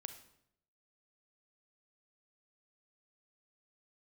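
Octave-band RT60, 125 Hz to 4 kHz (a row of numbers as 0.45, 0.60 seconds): 0.90, 0.80, 0.80, 0.70, 0.65, 0.60 seconds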